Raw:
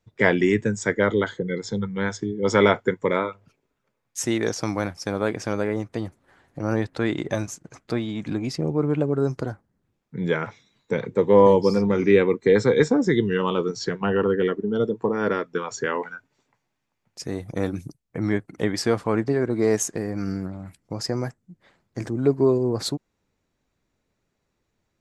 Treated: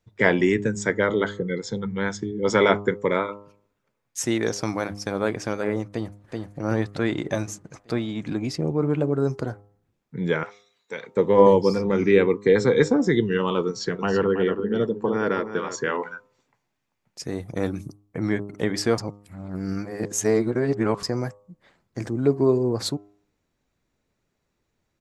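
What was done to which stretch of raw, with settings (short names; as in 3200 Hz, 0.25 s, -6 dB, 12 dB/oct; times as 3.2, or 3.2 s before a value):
5.86–6.61 echo throw 0.38 s, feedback 50%, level -3 dB
10.43–11.17 HPF 1400 Hz 6 dB/oct
13.66–15.97 echo 0.326 s -10 dB
18.98–21.03 reverse
whole clip: de-hum 101.8 Hz, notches 13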